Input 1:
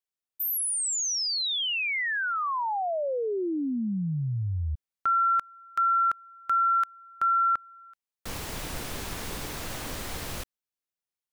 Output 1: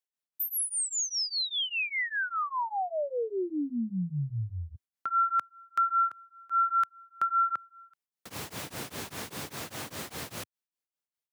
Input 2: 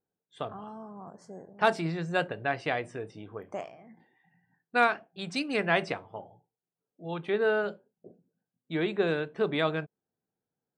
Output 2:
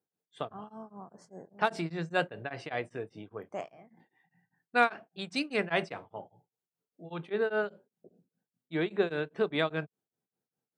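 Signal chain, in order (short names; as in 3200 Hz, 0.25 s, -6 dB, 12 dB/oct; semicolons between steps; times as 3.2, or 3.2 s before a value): HPF 97 Hz 24 dB/oct; beating tremolo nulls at 5 Hz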